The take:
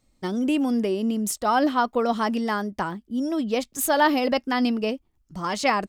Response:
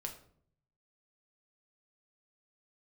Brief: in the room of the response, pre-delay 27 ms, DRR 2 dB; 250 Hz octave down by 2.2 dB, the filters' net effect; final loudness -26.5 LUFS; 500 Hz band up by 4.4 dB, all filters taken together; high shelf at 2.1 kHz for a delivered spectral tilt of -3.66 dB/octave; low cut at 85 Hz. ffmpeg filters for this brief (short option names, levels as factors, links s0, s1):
-filter_complex "[0:a]highpass=85,equalizer=f=250:t=o:g=-4,equalizer=f=500:t=o:g=6.5,highshelf=f=2100:g=-6,asplit=2[s0][s1];[1:a]atrim=start_sample=2205,adelay=27[s2];[s1][s2]afir=irnorm=-1:irlink=0,volume=0.944[s3];[s0][s3]amix=inputs=2:normalize=0,volume=0.562"